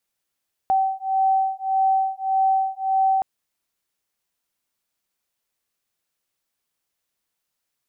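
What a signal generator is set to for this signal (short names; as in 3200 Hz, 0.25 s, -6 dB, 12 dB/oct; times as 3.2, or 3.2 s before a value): beating tones 768 Hz, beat 1.7 Hz, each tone -21 dBFS 2.52 s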